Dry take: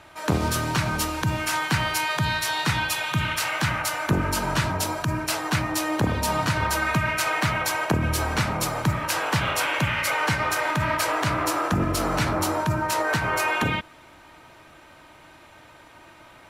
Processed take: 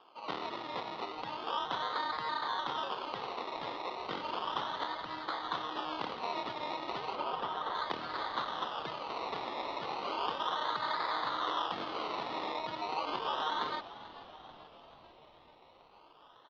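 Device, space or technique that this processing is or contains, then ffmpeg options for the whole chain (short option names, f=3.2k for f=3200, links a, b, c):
circuit-bent sampling toy: -filter_complex "[0:a]acrusher=samples=22:mix=1:aa=0.000001:lfo=1:lforange=13.2:lforate=0.34,lowpass=f=5.3k:w=0.5412,lowpass=f=5.3k:w=1.3066,highpass=580,equalizer=f=620:t=q:w=4:g=-6,equalizer=f=1.1k:t=q:w=4:g=3,equalizer=f=1.6k:t=q:w=4:g=-6,equalizer=f=2.4k:t=q:w=4:g=-8,equalizer=f=3.4k:t=q:w=4:g=3,lowpass=f=4.3k:w=0.5412,lowpass=f=4.3k:w=1.3066,asettb=1/sr,asplit=3[a][b][c];[a]atrim=end=7.154[d];[b]atrim=start=7.15:end=7.75,asetpts=PTS-STARTPTS,afade=t=in:d=0.004:c=qsin,afade=t=out:st=0.596:d=0.004:c=qsin,lowpass=f=2.1k:p=1[e];[c]atrim=start=7.746[f];[d][e]acrossfade=d=0.004:c1=hsin:c2=qsin[g];[g][f]acrossfade=d=0.004:c1=qsin:c2=hsin,asplit=7[h][i][j][k][l][m][n];[i]adelay=439,afreqshift=-78,volume=-16dB[o];[j]adelay=878,afreqshift=-156,volume=-20dB[p];[k]adelay=1317,afreqshift=-234,volume=-24dB[q];[l]adelay=1756,afreqshift=-312,volume=-28dB[r];[m]adelay=2195,afreqshift=-390,volume=-32.1dB[s];[n]adelay=2634,afreqshift=-468,volume=-36.1dB[t];[h][o][p][q][r][s][t]amix=inputs=7:normalize=0,volume=-7dB"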